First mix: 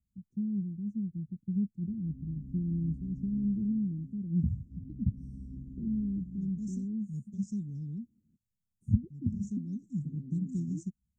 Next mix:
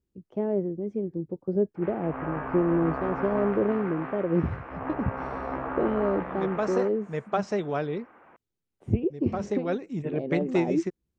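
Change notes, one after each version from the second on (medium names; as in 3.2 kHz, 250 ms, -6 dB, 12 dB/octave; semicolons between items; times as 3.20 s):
master: remove Chebyshev band-stop 220–6800 Hz, order 4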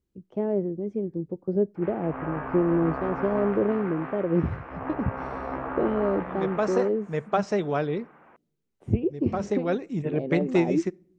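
reverb: on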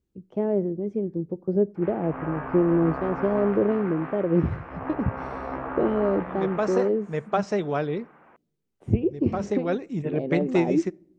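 first voice: send +10.5 dB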